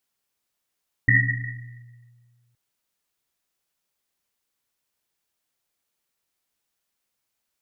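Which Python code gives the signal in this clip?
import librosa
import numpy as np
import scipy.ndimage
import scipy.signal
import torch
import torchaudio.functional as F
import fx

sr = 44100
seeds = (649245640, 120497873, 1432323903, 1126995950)

y = fx.risset_drum(sr, seeds[0], length_s=1.47, hz=120.0, decay_s=1.9, noise_hz=1900.0, noise_width_hz=120.0, noise_pct=60)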